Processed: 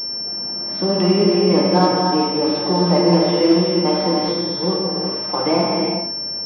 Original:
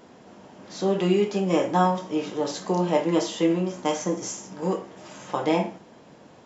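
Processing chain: bin magnitudes rounded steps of 15 dB; in parallel at +2 dB: limiter -18.5 dBFS, peak gain reduction 10 dB; on the sum: non-linear reverb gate 0.44 s flat, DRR -1.5 dB; pulse-width modulation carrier 5400 Hz; gain -1 dB

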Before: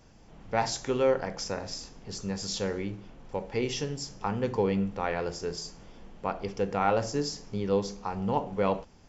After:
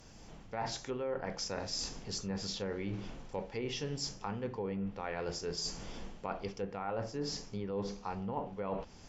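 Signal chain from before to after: recorder AGC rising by 6 dB/s; treble ducked by the level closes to 1900 Hz, closed at -23 dBFS; high shelf 3400 Hz +8 dB; reverse; compressor, threshold -35 dBFS, peak gain reduction 14 dB; reverse

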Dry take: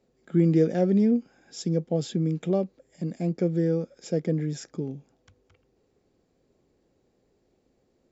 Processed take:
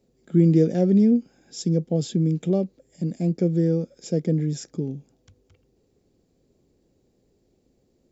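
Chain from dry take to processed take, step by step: bell 1300 Hz -10 dB 2.6 oct; gain +5.5 dB

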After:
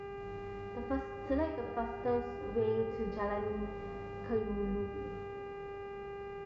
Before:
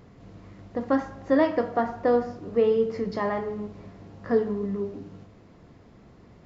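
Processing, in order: octaver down 2 oct, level -4 dB; added harmonics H 6 -27 dB, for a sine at -9.5 dBFS; compressor 2:1, threshold -38 dBFS, peak gain reduction 12 dB; buzz 400 Hz, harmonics 7, -44 dBFS -8 dB/oct; harmonic-percussive split percussive -16 dB; on a send: frequency-shifting echo 0.347 s, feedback 57%, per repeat +36 Hz, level -21 dB

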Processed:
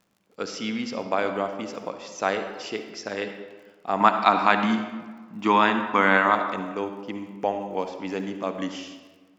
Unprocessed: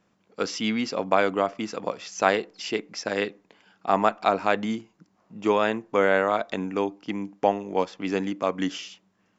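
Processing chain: 4–6.35 graphic EQ 250/500/1000/2000/4000 Hz +10/-7/+12/+6/+8 dB; crackle 42/s -44 dBFS; reverb RT60 1.4 s, pre-delay 50 ms, DRR 7 dB; gain -4 dB

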